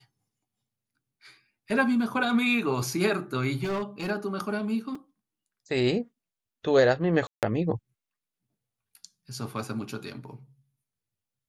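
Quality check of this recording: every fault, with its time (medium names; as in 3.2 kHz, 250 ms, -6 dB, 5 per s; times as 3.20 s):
3.63–4.11 s: clipped -26 dBFS
4.95 s: dropout 3.9 ms
7.27–7.43 s: dropout 158 ms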